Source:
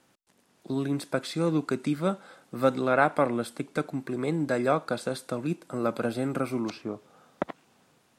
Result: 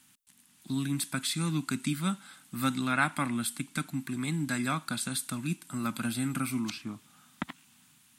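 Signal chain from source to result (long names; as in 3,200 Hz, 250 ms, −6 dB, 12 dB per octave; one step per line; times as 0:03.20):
drawn EQ curve 260 Hz 0 dB, 470 Hz −25 dB, 900 Hz −6 dB, 3,200 Hz +6 dB, 5,200 Hz +3 dB, 9,100 Hz +12 dB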